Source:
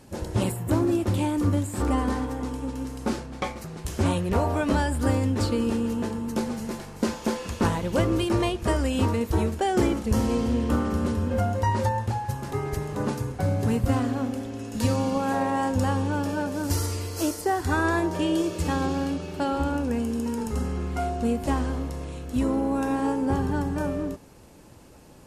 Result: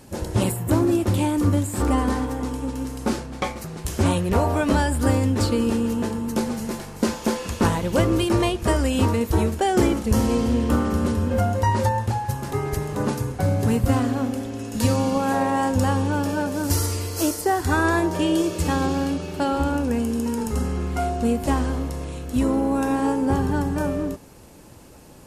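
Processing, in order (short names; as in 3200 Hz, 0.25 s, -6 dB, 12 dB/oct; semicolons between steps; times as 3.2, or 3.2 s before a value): high shelf 9000 Hz +5.5 dB; gain +3.5 dB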